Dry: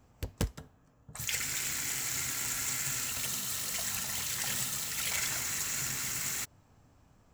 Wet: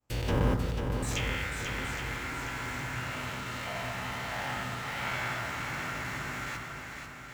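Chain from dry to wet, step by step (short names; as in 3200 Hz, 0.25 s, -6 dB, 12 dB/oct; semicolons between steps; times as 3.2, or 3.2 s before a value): spectral dilation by 0.24 s; expander -47 dBFS; low shelf 390 Hz -4.5 dB; treble ducked by the level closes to 1600 Hz, closed at -25.5 dBFS; in parallel at -6.5 dB: bit-crush 7-bit; on the sum: swung echo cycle 0.819 s, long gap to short 1.5:1, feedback 40%, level -6 dB; on a send at -8 dB: reverb RT60 1.2 s, pre-delay 3 ms; on the sum: gain -2 dB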